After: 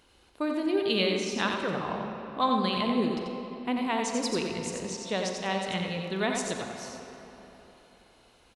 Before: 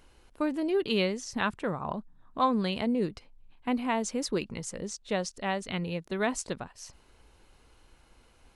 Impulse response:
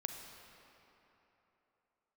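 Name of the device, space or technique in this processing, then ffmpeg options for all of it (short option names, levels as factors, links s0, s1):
PA in a hall: -filter_complex "[0:a]highpass=f=110:p=1,equalizer=f=3700:t=o:w=0.7:g=6,aecho=1:1:89:0.562[s0];[1:a]atrim=start_sample=2205[s1];[s0][s1]afir=irnorm=-1:irlink=0,volume=1.12"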